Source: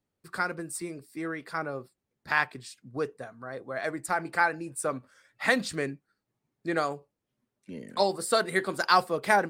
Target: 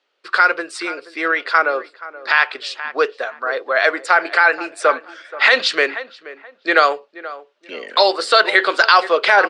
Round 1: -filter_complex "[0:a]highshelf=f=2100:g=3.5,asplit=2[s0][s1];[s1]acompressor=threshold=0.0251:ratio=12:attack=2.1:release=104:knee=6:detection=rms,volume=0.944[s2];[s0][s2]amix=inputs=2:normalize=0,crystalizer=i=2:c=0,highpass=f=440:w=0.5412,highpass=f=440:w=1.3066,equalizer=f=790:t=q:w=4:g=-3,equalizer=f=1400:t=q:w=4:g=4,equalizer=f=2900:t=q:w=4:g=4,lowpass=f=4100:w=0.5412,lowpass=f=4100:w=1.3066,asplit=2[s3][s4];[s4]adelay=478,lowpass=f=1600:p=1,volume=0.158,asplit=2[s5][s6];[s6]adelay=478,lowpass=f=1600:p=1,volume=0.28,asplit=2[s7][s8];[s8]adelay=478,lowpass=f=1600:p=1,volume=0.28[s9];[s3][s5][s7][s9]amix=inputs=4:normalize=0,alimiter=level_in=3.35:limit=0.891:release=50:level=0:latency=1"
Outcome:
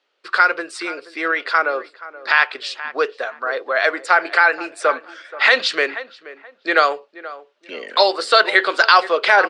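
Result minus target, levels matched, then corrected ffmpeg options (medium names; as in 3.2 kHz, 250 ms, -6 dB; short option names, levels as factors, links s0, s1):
compression: peak gain reduction +8.5 dB
-filter_complex "[0:a]highshelf=f=2100:g=3.5,asplit=2[s0][s1];[s1]acompressor=threshold=0.075:ratio=12:attack=2.1:release=104:knee=6:detection=rms,volume=0.944[s2];[s0][s2]amix=inputs=2:normalize=0,crystalizer=i=2:c=0,highpass=f=440:w=0.5412,highpass=f=440:w=1.3066,equalizer=f=790:t=q:w=4:g=-3,equalizer=f=1400:t=q:w=4:g=4,equalizer=f=2900:t=q:w=4:g=4,lowpass=f=4100:w=0.5412,lowpass=f=4100:w=1.3066,asplit=2[s3][s4];[s4]adelay=478,lowpass=f=1600:p=1,volume=0.158,asplit=2[s5][s6];[s6]adelay=478,lowpass=f=1600:p=1,volume=0.28,asplit=2[s7][s8];[s8]adelay=478,lowpass=f=1600:p=1,volume=0.28[s9];[s3][s5][s7][s9]amix=inputs=4:normalize=0,alimiter=level_in=3.35:limit=0.891:release=50:level=0:latency=1"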